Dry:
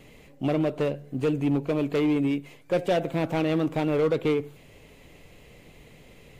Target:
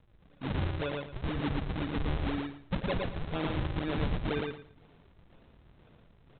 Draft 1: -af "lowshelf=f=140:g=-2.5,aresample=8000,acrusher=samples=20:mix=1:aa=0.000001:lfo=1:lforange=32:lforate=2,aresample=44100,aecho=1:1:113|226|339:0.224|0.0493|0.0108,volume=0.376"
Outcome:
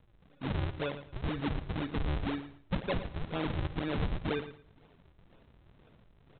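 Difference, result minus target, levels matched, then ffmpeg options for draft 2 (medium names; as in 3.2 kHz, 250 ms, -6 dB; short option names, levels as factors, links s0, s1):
echo-to-direct -10 dB
-af "lowshelf=f=140:g=-2.5,aresample=8000,acrusher=samples=20:mix=1:aa=0.000001:lfo=1:lforange=32:lforate=2,aresample=44100,aecho=1:1:113|226|339:0.708|0.156|0.0343,volume=0.376"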